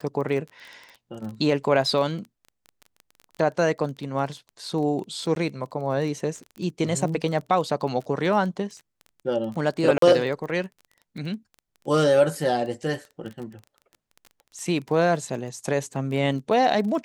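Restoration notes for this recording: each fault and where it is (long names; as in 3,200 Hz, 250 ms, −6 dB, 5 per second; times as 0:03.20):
surface crackle 20 per second −33 dBFS
0:05.35–0:05.36: drop-out 12 ms
0:09.98–0:10.02: drop-out 43 ms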